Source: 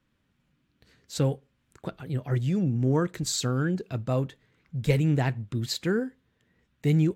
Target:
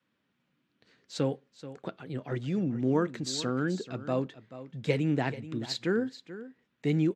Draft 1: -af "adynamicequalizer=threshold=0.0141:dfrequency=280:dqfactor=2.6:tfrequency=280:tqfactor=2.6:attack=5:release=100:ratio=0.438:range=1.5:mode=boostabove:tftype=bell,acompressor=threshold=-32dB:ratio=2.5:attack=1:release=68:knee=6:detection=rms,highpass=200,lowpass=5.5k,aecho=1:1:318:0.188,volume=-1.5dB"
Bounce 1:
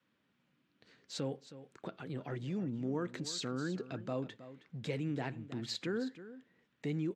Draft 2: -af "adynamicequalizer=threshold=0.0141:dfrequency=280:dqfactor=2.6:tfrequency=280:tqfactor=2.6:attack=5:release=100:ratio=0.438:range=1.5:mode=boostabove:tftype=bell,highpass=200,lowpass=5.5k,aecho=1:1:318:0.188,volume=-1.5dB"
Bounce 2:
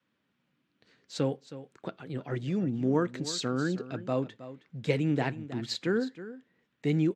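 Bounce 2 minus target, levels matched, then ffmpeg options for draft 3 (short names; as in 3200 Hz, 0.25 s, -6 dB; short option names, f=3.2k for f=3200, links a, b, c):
echo 0.115 s early
-af "adynamicequalizer=threshold=0.0141:dfrequency=280:dqfactor=2.6:tfrequency=280:tqfactor=2.6:attack=5:release=100:ratio=0.438:range=1.5:mode=boostabove:tftype=bell,highpass=200,lowpass=5.5k,aecho=1:1:433:0.188,volume=-1.5dB"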